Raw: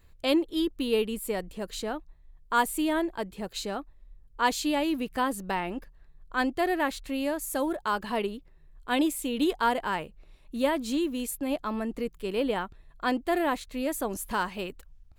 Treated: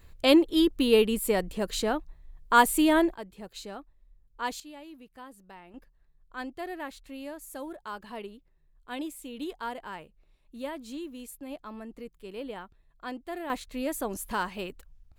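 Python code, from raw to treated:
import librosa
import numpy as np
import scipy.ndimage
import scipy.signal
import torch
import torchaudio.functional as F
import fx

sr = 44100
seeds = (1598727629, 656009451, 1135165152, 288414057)

y = fx.gain(x, sr, db=fx.steps((0.0, 5.0), (3.14, -7.5), (4.6, -19.0), (5.74, -10.5), (13.5, -1.5)))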